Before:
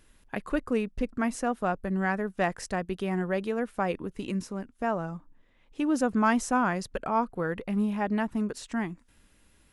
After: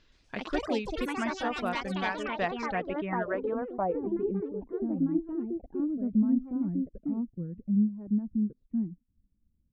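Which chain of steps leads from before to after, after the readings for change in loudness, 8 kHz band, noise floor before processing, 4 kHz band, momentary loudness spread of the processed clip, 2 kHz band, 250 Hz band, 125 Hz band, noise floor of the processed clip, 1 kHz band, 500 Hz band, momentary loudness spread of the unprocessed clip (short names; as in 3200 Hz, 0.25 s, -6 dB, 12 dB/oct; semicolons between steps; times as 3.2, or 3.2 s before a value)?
-1.5 dB, under -10 dB, -63 dBFS, +1.5 dB, 7 LU, -4.0 dB, 0.0 dB, -2.0 dB, -73 dBFS, -5.0 dB, -2.5 dB, 9 LU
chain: notch 810 Hz, Q 12; reverb removal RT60 1.6 s; downsampling 16000 Hz; low-pass sweep 4400 Hz -> 210 Hz, 2.41–4.88; echoes that change speed 0.121 s, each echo +4 st, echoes 3; gain -4 dB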